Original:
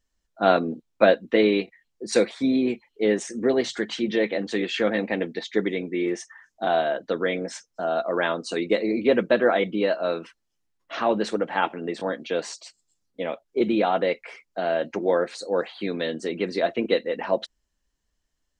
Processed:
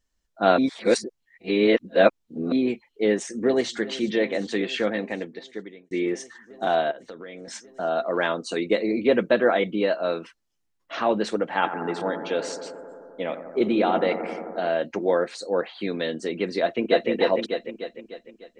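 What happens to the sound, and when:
0.58–2.52 reverse
3.08–3.72 echo throw 0.38 s, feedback 85%, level -17.5 dB
4.62–5.91 fade out
6.91–7.48 compressor 5:1, threshold -37 dBFS
8.34–10.03 notch 5100 Hz, Q 13
11.51–14.68 analogue delay 87 ms, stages 1024, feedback 82%, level -10.5 dB
15.33–15.78 treble ducked by the level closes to 2600 Hz, closed at -19 dBFS
16.61–17.1 echo throw 0.3 s, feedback 50%, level -0.5 dB

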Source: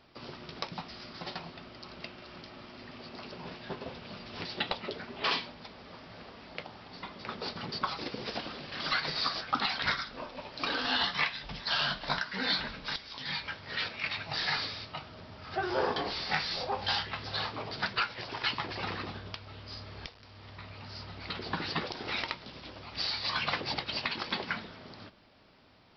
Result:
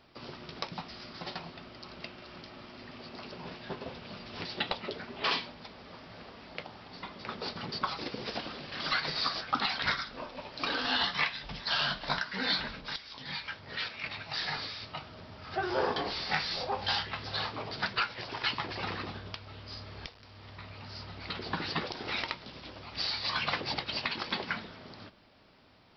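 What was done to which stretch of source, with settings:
12.81–14.82 harmonic tremolo 2.3 Hz, depth 50%, crossover 960 Hz

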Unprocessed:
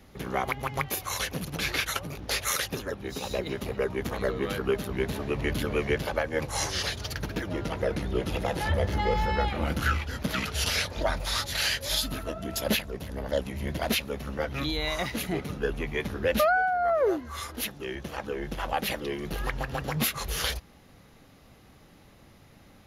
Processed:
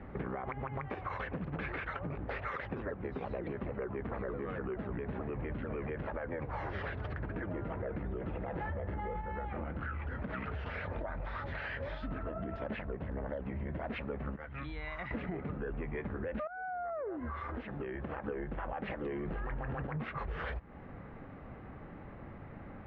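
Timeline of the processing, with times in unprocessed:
2.38–7.24 shaped vibrato saw down 4.6 Hz, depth 160 cents
9.21–12.72 compressor, threshold -32 dBFS
14.36–15.11 passive tone stack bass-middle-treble 5-5-5
16.47–18.28 compressor 12:1, threshold -38 dBFS
19.06–19.87 gain +11.5 dB
whole clip: LPF 1900 Hz 24 dB/oct; limiter -25 dBFS; compressor, threshold -43 dBFS; gain +7 dB

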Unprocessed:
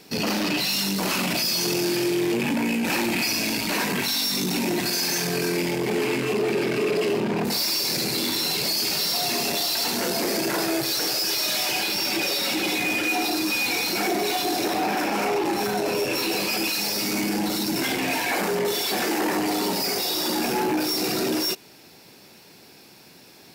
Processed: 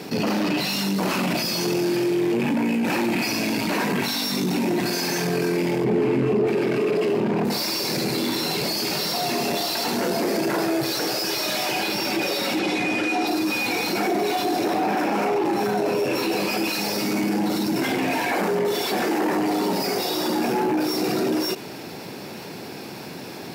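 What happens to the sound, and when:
5.84–6.47 tilt -2.5 dB/oct
12.59–13.27 LPF 8800 Hz
whole clip: HPF 92 Hz; high shelf 2200 Hz -10.5 dB; fast leveller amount 50%

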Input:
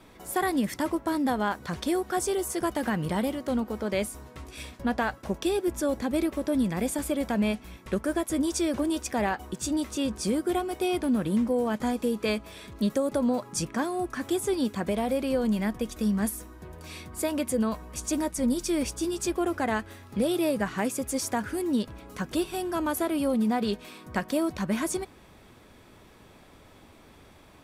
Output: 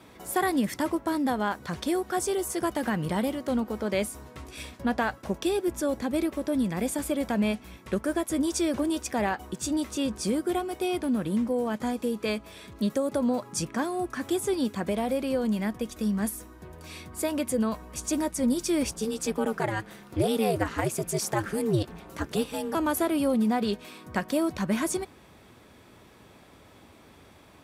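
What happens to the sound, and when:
18.91–22.75 ring modulator 110 Hz
whole clip: HPF 60 Hz; vocal rider 2 s

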